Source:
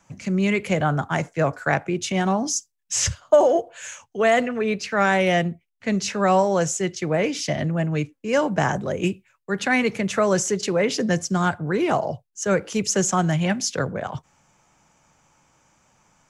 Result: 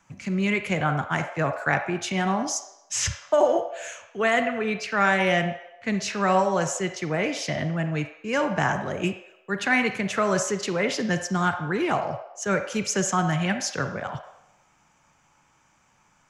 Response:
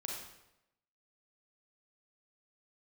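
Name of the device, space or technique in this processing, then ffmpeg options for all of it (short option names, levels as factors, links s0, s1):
filtered reverb send: -filter_complex "[0:a]asplit=2[s0][s1];[s1]highpass=f=550:w=0.5412,highpass=f=550:w=1.3066,lowpass=3600[s2];[1:a]atrim=start_sample=2205[s3];[s2][s3]afir=irnorm=-1:irlink=0,volume=0.794[s4];[s0][s4]amix=inputs=2:normalize=0,volume=0.668"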